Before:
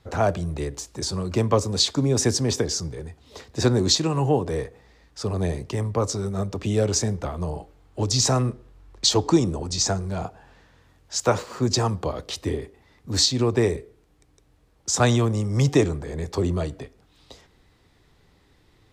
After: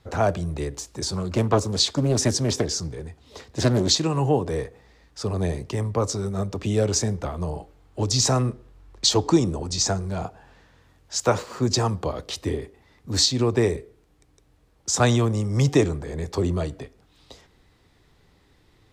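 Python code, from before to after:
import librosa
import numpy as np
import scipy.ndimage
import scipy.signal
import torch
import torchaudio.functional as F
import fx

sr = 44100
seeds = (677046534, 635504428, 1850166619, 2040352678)

y = fx.doppler_dist(x, sr, depth_ms=0.59, at=(1.13, 4.0))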